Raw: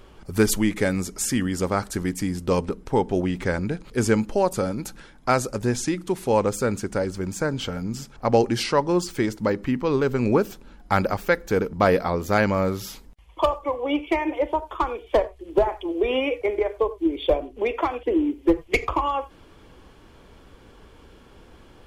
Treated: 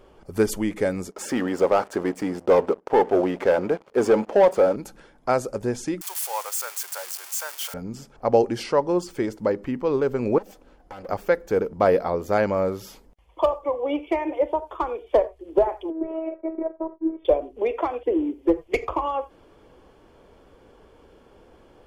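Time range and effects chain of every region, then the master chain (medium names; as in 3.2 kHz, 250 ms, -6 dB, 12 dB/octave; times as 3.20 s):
1.11–4.76 s: high-pass 670 Hz + tilt EQ -4.5 dB/octave + waveshaping leveller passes 3
6.01–7.74 s: zero-crossing glitches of -15 dBFS + high-pass 860 Hz 24 dB/octave
10.38–11.09 s: comb filter that takes the minimum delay 3.9 ms + band-stop 220 Hz, Q 5.4 + compression 10:1, threshold -33 dBFS
15.90–17.25 s: companding laws mixed up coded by A + low-pass 1.5 kHz 24 dB/octave + robot voice 323 Hz
whole clip: peaking EQ 550 Hz +9.5 dB 1.8 oct; band-stop 3.9 kHz, Q 16; trim -7.5 dB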